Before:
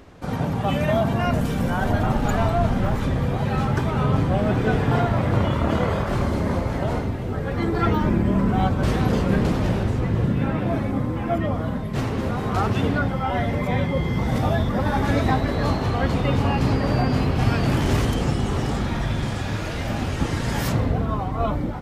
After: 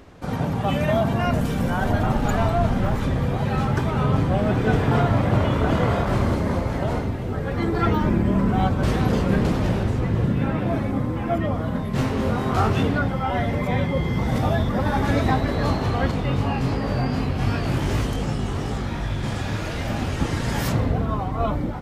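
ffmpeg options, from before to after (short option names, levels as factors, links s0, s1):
-filter_complex "[0:a]asettb=1/sr,asplit=3[s0][s1][s2];[s0]atrim=end=3.724[s3];[s1]atrim=start=3.72:end=6.35,asetpts=PTS-STARTPTS,afade=t=in:d=0.004:c=qsin,afade=t=out:st=2.626:d=0.004:c=qsin,aecho=1:1:963:0.501,atrim=end_sample=115983[s4];[s2]atrim=start=6.346[s5];[s3][s4]acrossfade=d=0.004:c1=hsin:c2=qsin[s6];[s6][s5]acrossfade=d=0.004:c1=qsin:c2=hsin,asettb=1/sr,asplit=3[s7][s8][s9];[s7]atrim=end=11.724[s10];[s8]atrim=start=11.72:end=12.83,asetpts=PTS-STARTPTS,afade=t=in:d=0.004:c=qsin,afade=t=out:st=1.106:d=0.004:c=qsin,asplit=2[s11][s12];[s12]adelay=23,volume=0.708[s13];[s11][s13]amix=inputs=2:normalize=0,atrim=end_sample=48951[s14];[s9]atrim=start=12.826[s15];[s10][s14]acrossfade=d=0.004:c1=hsin:c2=qsin[s16];[s16][s15]acrossfade=d=0.004:c1=qsin:c2=hsin,asettb=1/sr,asplit=3[s17][s18][s19];[s17]atrim=end=16.114[s20];[s18]atrim=start=16.11:end=19.24,asetpts=PTS-STARTPTS,afade=t=in:d=0.004:c=qsin,afade=t=out:st=3.126:d=0.004:c=qsin,flanger=delay=18.5:depth=4.1:speed=2.7[s21];[s19]atrim=start=19.236[s22];[s20][s21]acrossfade=d=0.004:c1=hsin:c2=qsin[s23];[s23][s22]acrossfade=d=0.004:c1=qsin:c2=hsin"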